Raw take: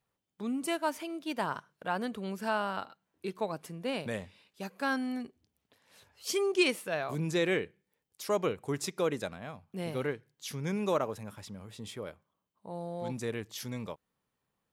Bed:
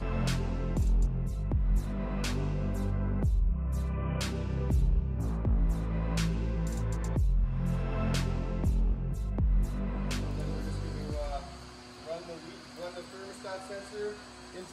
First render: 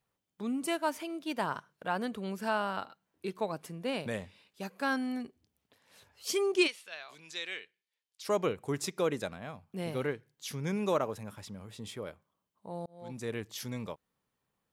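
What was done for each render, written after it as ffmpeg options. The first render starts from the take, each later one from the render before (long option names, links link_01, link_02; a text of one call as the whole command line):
ffmpeg -i in.wav -filter_complex "[0:a]asplit=3[link_01][link_02][link_03];[link_01]afade=type=out:start_time=6.66:duration=0.02[link_04];[link_02]bandpass=frequency=3800:width_type=q:width=1.2,afade=type=in:start_time=6.66:duration=0.02,afade=type=out:start_time=8.24:duration=0.02[link_05];[link_03]afade=type=in:start_time=8.24:duration=0.02[link_06];[link_04][link_05][link_06]amix=inputs=3:normalize=0,asplit=2[link_07][link_08];[link_07]atrim=end=12.86,asetpts=PTS-STARTPTS,afade=type=out:start_time=12.856:duration=0.004:curve=hsin[link_09];[link_08]atrim=start=12.86,asetpts=PTS-STARTPTS,afade=type=in:duration=0.51[link_10];[link_09][link_10]concat=n=2:v=0:a=1" out.wav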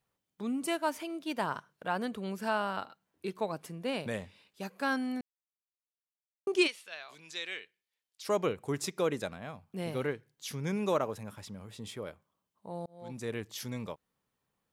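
ffmpeg -i in.wav -filter_complex "[0:a]asplit=3[link_01][link_02][link_03];[link_01]atrim=end=5.21,asetpts=PTS-STARTPTS,afade=type=out:start_time=5.206:duration=0.004:curve=hsin[link_04];[link_02]atrim=start=5.21:end=6.47,asetpts=PTS-STARTPTS,volume=0[link_05];[link_03]atrim=start=6.47,asetpts=PTS-STARTPTS,afade=type=in:duration=0.004:curve=hsin[link_06];[link_04][link_05][link_06]concat=n=3:v=0:a=1" out.wav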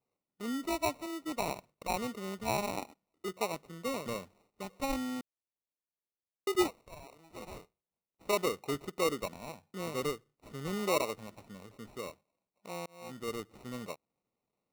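ffmpeg -i in.wav -af "bandpass=frequency=530:width_type=q:width=0.53:csg=0,acrusher=samples=27:mix=1:aa=0.000001" out.wav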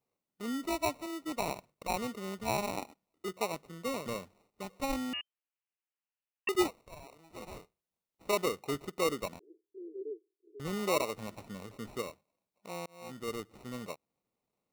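ffmpeg -i in.wav -filter_complex "[0:a]asettb=1/sr,asplit=3[link_01][link_02][link_03];[link_01]atrim=end=5.134[link_04];[link_02]atrim=start=5.13:end=6.49,asetpts=PTS-STARTPTS,afade=type=in:duration=0.004:curve=qsin,afade=type=out:start_time=1.356:duration=0.004:curve=qsin,lowpass=frequency=2600:width_type=q:width=0.5098,lowpass=frequency=2600:width_type=q:width=0.6013,lowpass=frequency=2600:width_type=q:width=0.9,lowpass=frequency=2600:width_type=q:width=2.563,afreqshift=-3100[link_05];[link_03]atrim=start=6.486[link_06];[link_04][link_05]acrossfade=duration=0.004:curve1=hsin:curve2=qsin[link_07];[link_07][link_06]acrossfade=duration=0.004:curve1=qsin:curve2=hsin,asettb=1/sr,asplit=3[link_08][link_09][link_10];[link_08]atrim=end=9.394[link_11];[link_09]atrim=start=9.39:end=10.6,asetpts=PTS-STARTPTS,afade=type=in:duration=0.004:curve=qsin,afade=type=out:start_time=1.206:duration=0.004:curve=qsin,asuperpass=centerf=370:order=8:qfactor=3.2[link_12];[link_10]atrim=start=10.596[link_13];[link_11][link_12]acrossfade=duration=0.004:curve1=hsin:curve2=qsin[link_14];[link_14][link_13]acrossfade=duration=0.004:curve1=qsin:curve2=hsin,asplit=3[link_15][link_16][link_17];[link_15]atrim=end=11.162[link_18];[link_16]atrim=start=11.158:end=12.022,asetpts=PTS-STARTPTS,volume=5dB[link_19];[link_17]atrim=start=12.018[link_20];[link_18][link_19]acrossfade=duration=0.004:curve1=hsin:curve2=hsin[link_21];[link_21][link_20]acrossfade=duration=0.004:curve1=hsin:curve2=hsin" out.wav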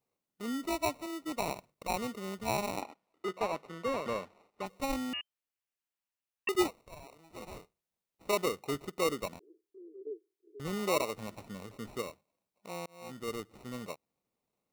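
ffmpeg -i in.wav -filter_complex "[0:a]asettb=1/sr,asplit=3[link_01][link_02][link_03];[link_01]atrim=end=2.824[link_04];[link_02]atrim=start=2.82:end=4.66,asetpts=PTS-STARTPTS,afade=type=in:duration=0.004:curve=qsin,afade=type=out:start_time=1.836:duration=0.004:curve=qsin,asplit=2[link_05][link_06];[link_06]highpass=frequency=720:poles=1,volume=15dB,asoftclip=type=tanh:threshold=-20.5dB[link_07];[link_05][link_07]amix=inputs=2:normalize=0,lowpass=frequency=1800:poles=1,volume=-6dB[link_08];[link_03]atrim=start=4.656[link_09];[link_04][link_08]acrossfade=duration=0.004:curve1=hsin:curve2=qsin[link_10];[link_10][link_09]acrossfade=duration=0.004:curve1=qsin:curve2=hsin,asettb=1/sr,asplit=3[link_11][link_12][link_13];[link_11]atrim=end=9.444[link_14];[link_12]atrim=start=9.44:end=10.07,asetpts=PTS-STARTPTS,afade=type=in:duration=0.004:curve=qsin,afade=type=out:start_time=0.626:duration=0.004:curve=qsin,acompressor=threshold=-58dB:ratio=1.5:attack=3.2:release=140:knee=1:detection=peak[link_15];[link_13]atrim=start=10.066[link_16];[link_14][link_15]acrossfade=duration=0.004:curve1=hsin:curve2=qsin[link_17];[link_17][link_16]acrossfade=duration=0.004:curve1=qsin:curve2=hsin" out.wav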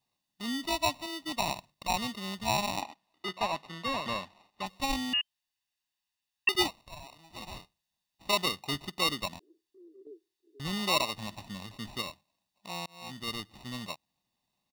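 ffmpeg -i in.wav -af "equalizer=frequency=3900:width_type=o:width=1.2:gain=10,aecho=1:1:1.1:0.69" out.wav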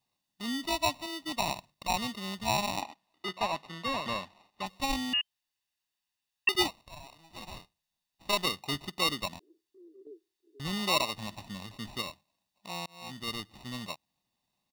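ffmpeg -i in.wav -filter_complex "[0:a]asettb=1/sr,asplit=3[link_01][link_02][link_03];[link_01]atrim=end=6.824[link_04];[link_02]atrim=start=6.82:end=8.45,asetpts=PTS-STARTPTS,afade=type=in:duration=0.004:curve=qsin,afade=type=out:start_time=1.626:duration=0.004:curve=qsin,aeval=exprs='if(lt(val(0),0),0.708*val(0),val(0))':channel_layout=same[link_05];[link_03]atrim=start=8.446[link_06];[link_04][link_05]acrossfade=duration=0.004:curve1=hsin:curve2=qsin[link_07];[link_07][link_06]acrossfade=duration=0.004:curve1=qsin:curve2=hsin" out.wav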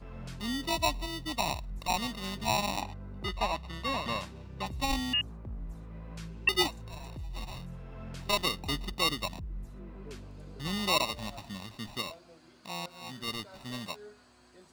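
ffmpeg -i in.wav -i bed.wav -filter_complex "[1:a]volume=-13dB[link_01];[0:a][link_01]amix=inputs=2:normalize=0" out.wav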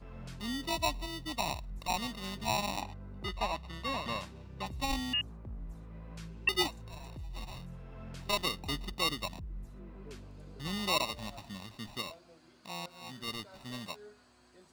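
ffmpeg -i in.wav -af "volume=-3dB" out.wav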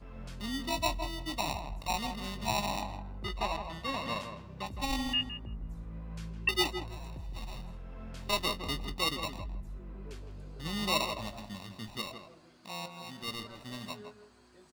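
ffmpeg -i in.wav -filter_complex "[0:a]asplit=2[link_01][link_02];[link_02]adelay=19,volume=-11dB[link_03];[link_01][link_03]amix=inputs=2:normalize=0,asplit=2[link_04][link_05];[link_05]adelay=162,lowpass=frequency=1600:poles=1,volume=-6.5dB,asplit=2[link_06][link_07];[link_07]adelay=162,lowpass=frequency=1600:poles=1,volume=0.23,asplit=2[link_08][link_09];[link_09]adelay=162,lowpass=frequency=1600:poles=1,volume=0.23[link_10];[link_04][link_06][link_08][link_10]amix=inputs=4:normalize=0" out.wav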